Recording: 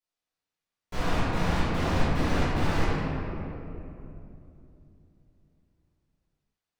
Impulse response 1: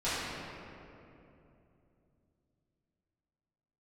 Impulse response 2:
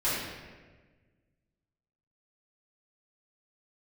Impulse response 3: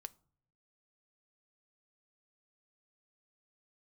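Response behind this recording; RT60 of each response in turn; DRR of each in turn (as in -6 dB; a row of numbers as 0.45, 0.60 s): 1; 2.9 s, 1.4 s, not exponential; -15.0, -12.5, 12.5 dB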